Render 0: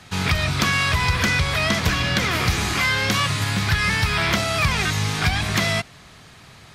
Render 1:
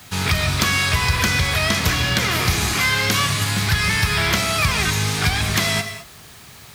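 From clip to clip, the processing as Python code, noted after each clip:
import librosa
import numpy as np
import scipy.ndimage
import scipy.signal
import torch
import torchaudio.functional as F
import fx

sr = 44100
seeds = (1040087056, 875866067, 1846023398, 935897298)

y = fx.high_shelf(x, sr, hz=7000.0, db=9.5)
y = fx.quant_dither(y, sr, seeds[0], bits=8, dither='triangular')
y = fx.rev_gated(y, sr, seeds[1], gate_ms=240, shape='flat', drr_db=7.5)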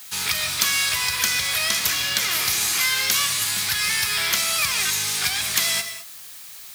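y = fx.tilt_eq(x, sr, slope=4.0)
y = y * librosa.db_to_amplitude(-8.0)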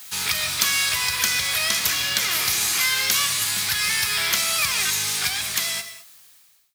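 y = fx.fade_out_tail(x, sr, length_s=1.63)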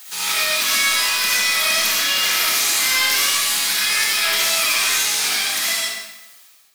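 y = scipy.signal.sosfilt(scipy.signal.butter(4, 220.0, 'highpass', fs=sr, output='sos'), x)
y = 10.0 ** (-17.5 / 20.0) * np.tanh(y / 10.0 ** (-17.5 / 20.0))
y = fx.rev_freeverb(y, sr, rt60_s=0.84, hf_ratio=0.85, predelay_ms=30, drr_db=-5.5)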